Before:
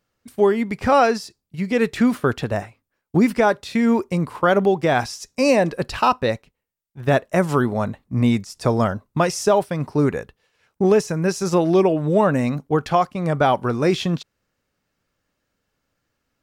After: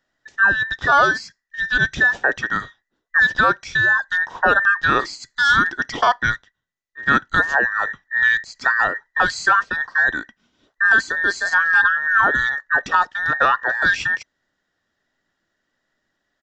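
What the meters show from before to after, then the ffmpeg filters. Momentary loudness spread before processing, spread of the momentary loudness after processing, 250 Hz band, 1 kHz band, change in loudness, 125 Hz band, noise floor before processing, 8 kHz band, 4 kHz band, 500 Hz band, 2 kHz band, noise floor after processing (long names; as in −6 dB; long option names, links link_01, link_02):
8 LU, 8 LU, −14.0 dB, +2.5 dB, +2.5 dB, −12.5 dB, −77 dBFS, −3.5 dB, +3.5 dB, −10.5 dB, +15.0 dB, −77 dBFS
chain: -af "afftfilt=real='real(if(between(b,1,1012),(2*floor((b-1)/92)+1)*92-b,b),0)':imag='imag(if(between(b,1,1012),(2*floor((b-1)/92)+1)*92-b,b),0)*if(between(b,1,1012),-1,1)':win_size=2048:overlap=0.75,lowshelf=frequency=370:gain=6,aresample=16000,aresample=44100"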